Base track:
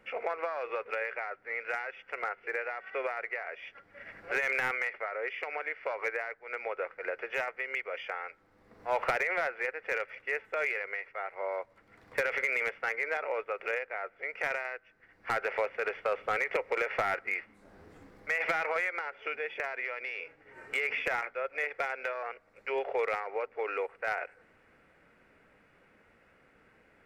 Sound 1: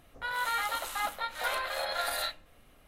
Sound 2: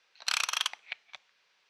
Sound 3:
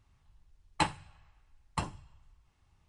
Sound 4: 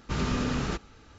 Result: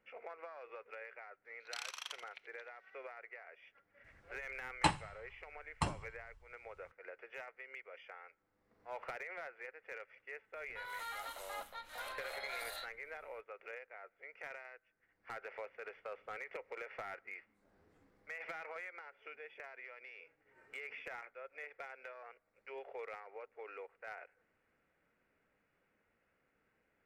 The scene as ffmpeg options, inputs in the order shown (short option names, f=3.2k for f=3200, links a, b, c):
-filter_complex "[0:a]volume=-15.5dB[a];[2:a]asplit=5[b][c][d][e][f];[c]adelay=84,afreqshift=-120,volume=-11dB[g];[d]adelay=168,afreqshift=-240,volume=-19.4dB[h];[e]adelay=252,afreqshift=-360,volume=-27.8dB[i];[f]adelay=336,afreqshift=-480,volume=-36.2dB[j];[b][g][h][i][j]amix=inputs=5:normalize=0[k];[1:a]asoftclip=type=tanh:threshold=-22.5dB[l];[k]atrim=end=1.69,asetpts=PTS-STARTPTS,volume=-16dB,afade=t=in:d=0.004:c=hsin,afade=t=out:st=1.686:d=0.004:c=hsin,adelay=1450[m];[3:a]atrim=end=2.88,asetpts=PTS-STARTPTS,volume=-1.5dB,afade=t=in:d=0.004:c=hsin,afade=t=out:st=2.876:d=0.004:c=hsin,adelay=4040[n];[l]atrim=end=2.87,asetpts=PTS-STARTPTS,volume=-12.5dB,afade=t=in:d=0.004:c=hsin,afade=t=out:st=2.866:d=0.004:c=hsin,adelay=10540[o];[a][m][n][o]amix=inputs=4:normalize=0"